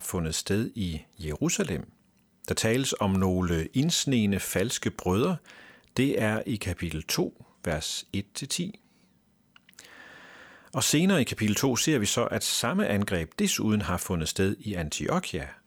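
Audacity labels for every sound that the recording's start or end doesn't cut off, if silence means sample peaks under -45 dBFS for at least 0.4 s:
2.440000	8.750000	sound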